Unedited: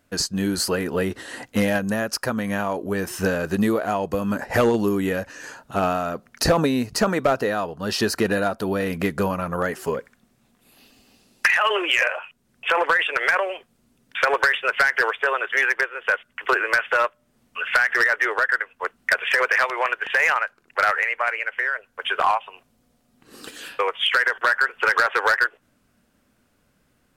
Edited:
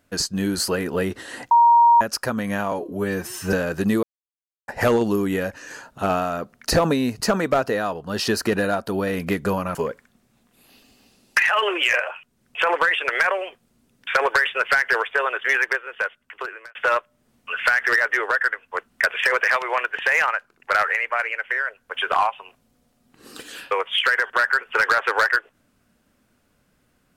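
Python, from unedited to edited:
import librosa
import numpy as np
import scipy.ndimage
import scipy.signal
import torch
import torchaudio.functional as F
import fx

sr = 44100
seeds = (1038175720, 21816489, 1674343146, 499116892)

y = fx.edit(x, sr, fx.bleep(start_s=1.51, length_s=0.5, hz=940.0, db=-10.0),
    fx.stretch_span(start_s=2.72, length_s=0.54, factor=1.5),
    fx.silence(start_s=3.76, length_s=0.65),
    fx.cut(start_s=9.48, length_s=0.35),
    fx.fade_out_span(start_s=15.74, length_s=1.09), tone=tone)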